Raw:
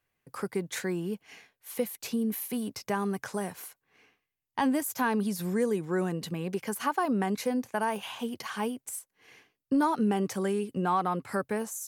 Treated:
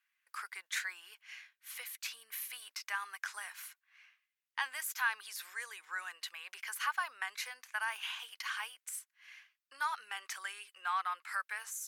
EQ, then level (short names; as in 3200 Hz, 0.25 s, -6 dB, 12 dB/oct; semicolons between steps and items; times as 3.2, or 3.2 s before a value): HPF 1400 Hz 24 dB/oct; high shelf 4300 Hz -10 dB; +4.0 dB